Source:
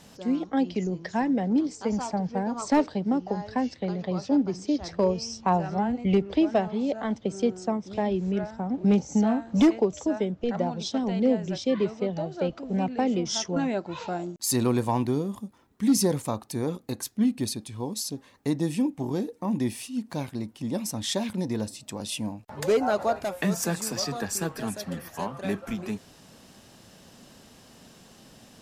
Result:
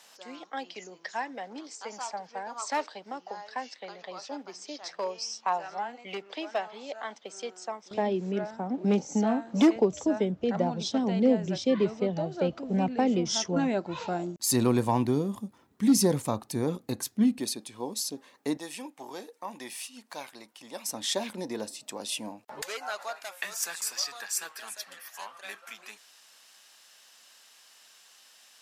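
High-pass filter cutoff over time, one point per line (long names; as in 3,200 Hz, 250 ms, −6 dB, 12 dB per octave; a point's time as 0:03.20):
880 Hz
from 0:07.91 240 Hz
from 0:09.76 83 Hz
from 0:17.39 310 Hz
from 0:18.57 780 Hz
from 0:20.89 360 Hz
from 0:22.62 1,400 Hz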